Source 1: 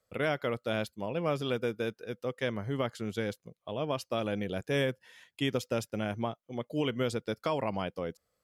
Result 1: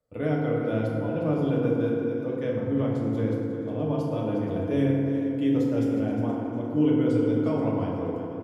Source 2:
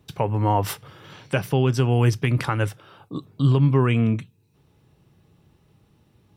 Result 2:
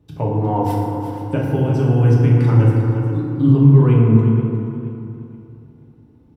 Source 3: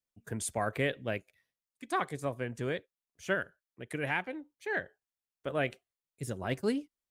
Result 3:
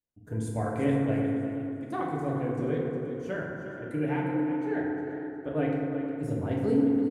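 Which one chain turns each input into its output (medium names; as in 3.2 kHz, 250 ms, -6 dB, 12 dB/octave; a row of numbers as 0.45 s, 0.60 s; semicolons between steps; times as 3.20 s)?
tilt shelf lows +7.5 dB, about 940 Hz; feedback delay 358 ms, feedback 24%, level -11 dB; FDN reverb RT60 2.4 s, low-frequency decay 1.25×, high-frequency decay 0.4×, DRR -4 dB; modulated delay 476 ms, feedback 33%, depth 83 cents, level -16 dB; trim -6 dB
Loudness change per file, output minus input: +7.5 LU, +6.0 LU, +5.0 LU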